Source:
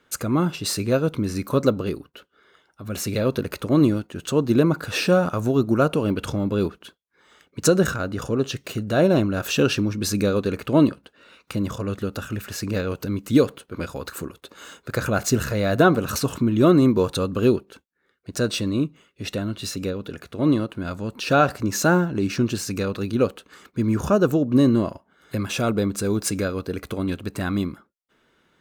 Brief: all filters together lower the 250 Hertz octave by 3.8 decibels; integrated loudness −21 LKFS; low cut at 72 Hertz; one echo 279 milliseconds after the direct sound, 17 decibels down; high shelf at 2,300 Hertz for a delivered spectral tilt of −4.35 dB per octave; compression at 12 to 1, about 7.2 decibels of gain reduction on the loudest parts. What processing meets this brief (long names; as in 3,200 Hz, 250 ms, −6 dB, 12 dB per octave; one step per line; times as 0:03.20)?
high-pass filter 72 Hz
parametric band 250 Hz −5 dB
high-shelf EQ 2,300 Hz +3.5 dB
downward compressor 12 to 1, threshold −20 dBFS
single-tap delay 279 ms −17 dB
level +6.5 dB